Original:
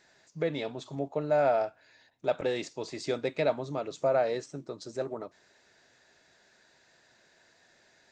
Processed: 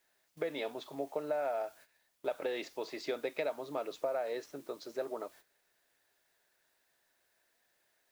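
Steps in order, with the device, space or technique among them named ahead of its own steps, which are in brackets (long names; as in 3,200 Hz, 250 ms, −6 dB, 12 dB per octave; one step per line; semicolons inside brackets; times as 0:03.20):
baby monitor (band-pass filter 360–4,000 Hz; downward compressor 10 to 1, threshold −31 dBFS, peak gain reduction 10 dB; white noise bed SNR 24 dB; noise gate −56 dBFS, range −14 dB)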